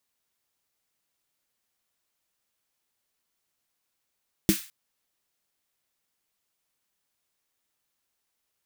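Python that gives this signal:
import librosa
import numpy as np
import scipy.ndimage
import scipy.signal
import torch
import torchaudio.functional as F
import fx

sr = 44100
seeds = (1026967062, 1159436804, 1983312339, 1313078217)

y = fx.drum_snare(sr, seeds[0], length_s=0.21, hz=200.0, second_hz=320.0, noise_db=-9, noise_from_hz=1500.0, decay_s=0.11, noise_decay_s=0.39)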